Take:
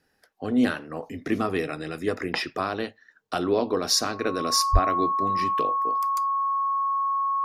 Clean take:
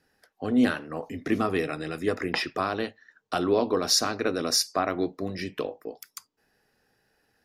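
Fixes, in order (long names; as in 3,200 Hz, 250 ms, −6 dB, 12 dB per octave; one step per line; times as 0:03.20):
notch filter 1,100 Hz, Q 30
high-pass at the plosives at 0:04.72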